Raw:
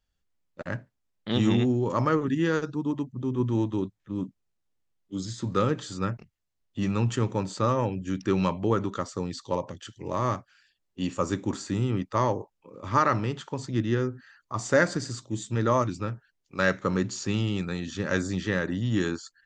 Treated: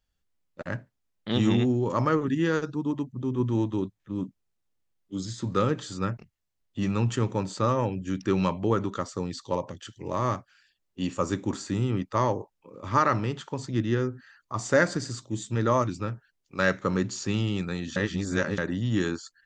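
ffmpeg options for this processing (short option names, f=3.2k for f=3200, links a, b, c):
-filter_complex "[0:a]asplit=3[a][b][c];[a]atrim=end=17.962[d];[b]atrim=start=17.958:end=18.582,asetpts=PTS-STARTPTS,areverse[e];[c]atrim=start=18.578[f];[d][e]acrossfade=d=0.004:c1=hsin:c2=hsin[g];[g][f]acrossfade=d=0.004:c1=hsin:c2=hsin"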